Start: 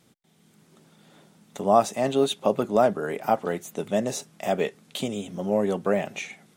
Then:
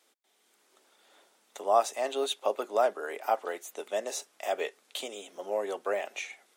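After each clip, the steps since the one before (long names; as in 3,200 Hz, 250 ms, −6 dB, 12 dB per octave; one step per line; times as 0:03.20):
Bessel high-pass filter 550 Hz, order 6
level −3 dB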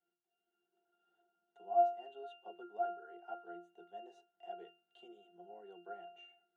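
resonances in every octave F, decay 0.37 s
level +2.5 dB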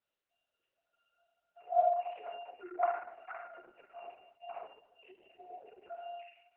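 three sine waves on the formant tracks
rectangular room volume 190 cubic metres, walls mixed, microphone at 1 metre
level +2.5 dB
Opus 6 kbit/s 48,000 Hz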